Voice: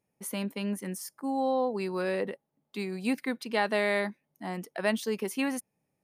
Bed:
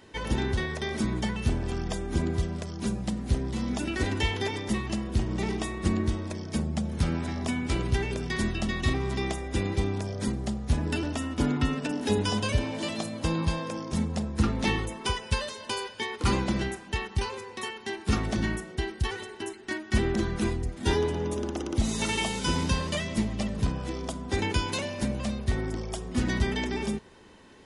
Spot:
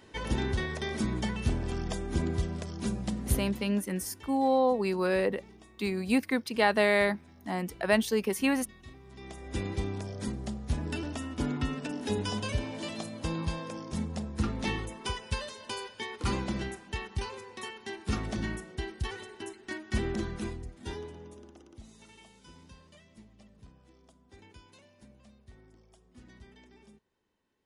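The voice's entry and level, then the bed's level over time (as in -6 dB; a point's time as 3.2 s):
3.05 s, +3.0 dB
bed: 3.37 s -2.5 dB
3.84 s -23.5 dB
9.04 s -23.5 dB
9.54 s -5.5 dB
20.19 s -5.5 dB
22.05 s -27 dB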